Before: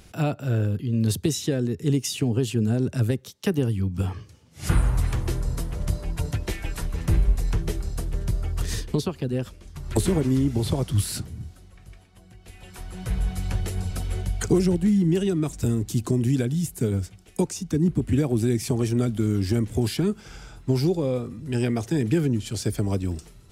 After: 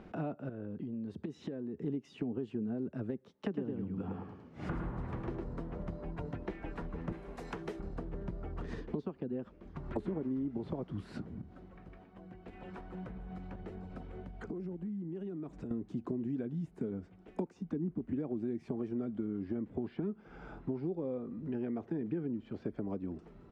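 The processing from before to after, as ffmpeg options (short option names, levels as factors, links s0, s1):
-filter_complex "[0:a]asettb=1/sr,asplit=3[s0][s1][s2];[s0]atrim=end=0.494[s3];[s1]atrim=start=0.49:end=1.83,asetpts=PTS-STARTPTS,afade=t=in:d=0.004:c=qsin,afade=t=out:st=1.336:d=0.004:c=qsin,acompressor=threshold=0.0282:ratio=5:attack=3.2:release=140:knee=1:detection=peak[s4];[s2]atrim=start=1.826[s5];[s3][s4]acrossfade=d=0.004:c1=hsin:c2=qsin[s6];[s6][s5]acrossfade=d=0.004:c1=qsin:c2=hsin,asplit=3[s7][s8][s9];[s7]afade=t=out:st=3.48:d=0.02[s10];[s8]aecho=1:1:107|214|321|428:0.668|0.174|0.0452|0.0117,afade=t=in:st=3.48:d=0.02,afade=t=out:st=5.43:d=0.02[s11];[s9]afade=t=in:st=5.43:d=0.02[s12];[s10][s11][s12]amix=inputs=3:normalize=0,asettb=1/sr,asplit=3[s13][s14][s15];[s13]atrim=end=7.124[s16];[s14]atrim=start=7.12:end=7.8,asetpts=PTS-STARTPTS,afade=t=in:d=0.004:c=qsin,afade=t=out:st=0.676:d=0.004:c=qsin,aemphasis=mode=production:type=riaa[s17];[s15]atrim=start=7.796[s18];[s16][s17]acrossfade=d=0.004:c1=hsin:c2=qsin[s19];[s19][s18]acrossfade=d=0.004:c1=qsin:c2=hsin,asettb=1/sr,asplit=3[s20][s21][s22];[s20]atrim=end=11.414[s23];[s21]atrim=start=11.41:end=15.71,asetpts=PTS-STARTPTS,afade=t=in:d=0.004:c=qsin,afade=t=out:st=4.296:d=0.004:c=qsin,acompressor=threshold=0.01:ratio=3:attack=3.2:release=140:knee=1:detection=peak[s24];[s22]atrim=start=15.706[s25];[s23][s24]acrossfade=d=0.004:c1=hsin:c2=qsin[s26];[s26][s25]acrossfade=d=0.004:c1=qsin:c2=hsin,asettb=1/sr,asplit=3[s27][s28][s29];[s27]atrim=end=19.274[s30];[s28]atrim=start=19.27:end=22.76,asetpts=PTS-STARTPTS,afade=t=in:d=0.004:c=qsin,afade=t=out:st=3.486:d=0.004:c=qsin,acrossover=split=3900[s31][s32];[s32]acompressor=threshold=0.00355:ratio=4:attack=1:release=60[s33];[s31][s33]amix=inputs=2:normalize=0[s34];[s29]atrim=start=22.756[s35];[s30][s34]acrossfade=d=0.004:c1=hsin:c2=qsin[s36];[s36][s35]acrossfade=d=0.004:c1=qsin:c2=hsin,lowpass=1300,lowshelf=f=150:t=q:w=1.5:g=-10,acompressor=threshold=0.00794:ratio=3,volume=1.33"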